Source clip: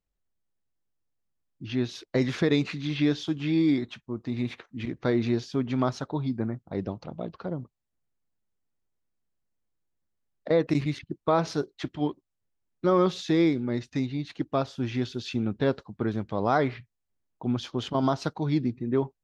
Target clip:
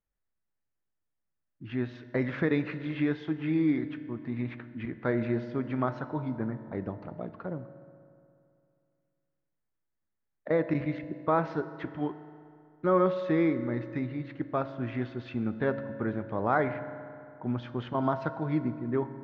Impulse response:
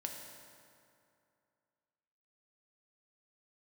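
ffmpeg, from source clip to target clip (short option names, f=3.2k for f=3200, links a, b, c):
-filter_complex "[0:a]acrusher=bits=9:mode=log:mix=0:aa=0.000001,lowpass=f=1.8k:t=q:w=1.7,asplit=2[a][b];[1:a]atrim=start_sample=2205[c];[b][c]afir=irnorm=-1:irlink=0,volume=-2dB[d];[a][d]amix=inputs=2:normalize=0,volume=-8dB"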